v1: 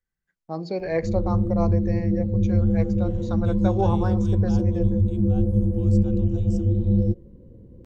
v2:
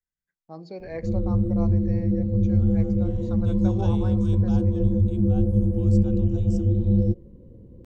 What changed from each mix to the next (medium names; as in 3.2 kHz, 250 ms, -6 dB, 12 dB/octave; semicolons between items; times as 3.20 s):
first voice -9.5 dB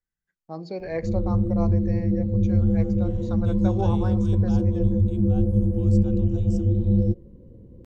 first voice +5.0 dB